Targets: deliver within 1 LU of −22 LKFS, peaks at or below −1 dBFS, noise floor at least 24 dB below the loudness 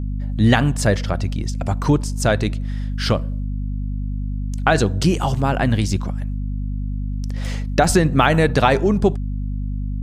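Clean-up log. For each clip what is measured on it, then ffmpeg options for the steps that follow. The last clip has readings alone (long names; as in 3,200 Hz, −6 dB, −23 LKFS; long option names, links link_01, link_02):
mains hum 50 Hz; hum harmonics up to 250 Hz; level of the hum −21 dBFS; integrated loudness −20.5 LKFS; sample peak −1.5 dBFS; target loudness −22.0 LKFS
→ -af "bandreject=frequency=50:width_type=h:width=4,bandreject=frequency=100:width_type=h:width=4,bandreject=frequency=150:width_type=h:width=4,bandreject=frequency=200:width_type=h:width=4,bandreject=frequency=250:width_type=h:width=4"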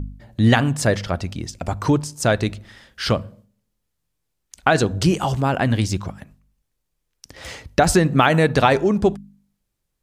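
mains hum none found; integrated loudness −19.5 LKFS; sample peak −1.5 dBFS; target loudness −22.0 LKFS
→ -af "volume=-2.5dB"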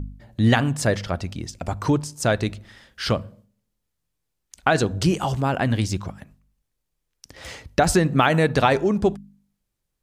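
integrated loudness −22.0 LKFS; sample peak −4.0 dBFS; background noise floor −78 dBFS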